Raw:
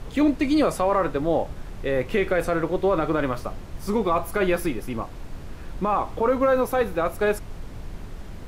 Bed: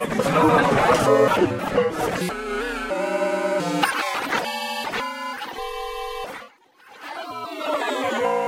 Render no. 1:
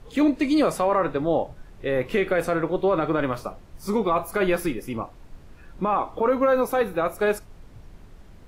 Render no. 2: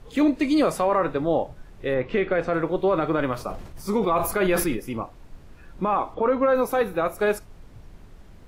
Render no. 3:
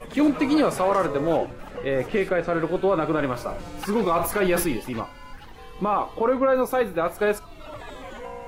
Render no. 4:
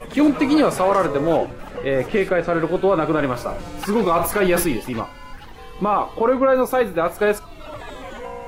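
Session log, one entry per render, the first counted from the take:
noise print and reduce 10 dB
1.94–2.54 s: distance through air 160 m; 3.35–4.77 s: decay stretcher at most 62 dB/s; 6.14–6.55 s: distance through air 100 m
add bed -15.5 dB
trim +4 dB

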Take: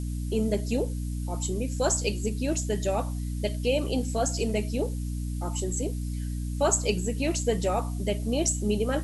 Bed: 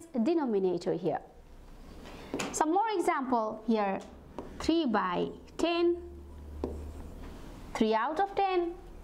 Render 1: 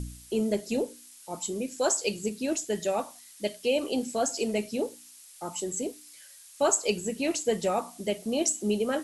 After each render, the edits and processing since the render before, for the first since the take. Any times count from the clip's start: de-hum 60 Hz, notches 5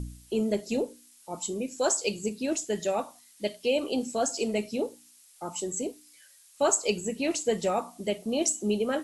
noise print and reduce 6 dB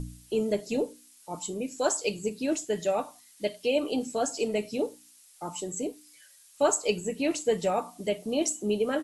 dynamic bell 6 kHz, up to -4 dB, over -44 dBFS, Q 0.89; comb 6.7 ms, depth 33%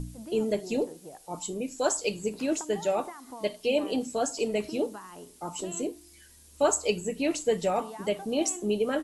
add bed -15 dB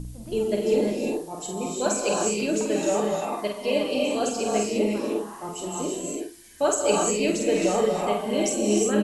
doubling 48 ms -5 dB; gated-style reverb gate 380 ms rising, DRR -1.5 dB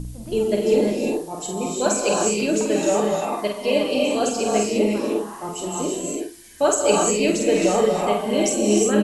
trim +4 dB

